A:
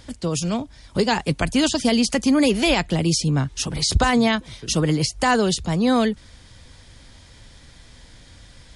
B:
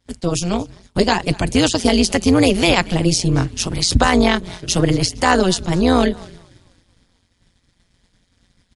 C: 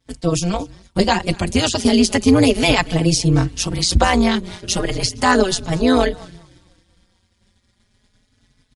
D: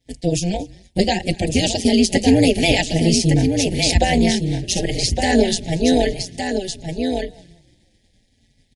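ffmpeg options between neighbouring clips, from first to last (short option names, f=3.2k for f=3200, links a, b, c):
-filter_complex "[0:a]asplit=6[a][b][c][d][e][f];[b]adelay=233,afreqshift=-44,volume=-22.5dB[g];[c]adelay=466,afreqshift=-88,volume=-26.7dB[h];[d]adelay=699,afreqshift=-132,volume=-30.8dB[i];[e]adelay=932,afreqshift=-176,volume=-35dB[j];[f]adelay=1165,afreqshift=-220,volume=-39.1dB[k];[a][g][h][i][j][k]amix=inputs=6:normalize=0,agate=range=-33dB:threshold=-33dB:ratio=3:detection=peak,tremolo=f=180:d=0.857,volume=7.5dB"
-filter_complex "[0:a]asplit=2[a][b];[b]adelay=4.1,afreqshift=0.33[c];[a][c]amix=inputs=2:normalize=1,volume=2.5dB"
-af "asuperstop=centerf=1200:order=8:qfactor=1.3,aecho=1:1:1162:0.501,volume=-1dB"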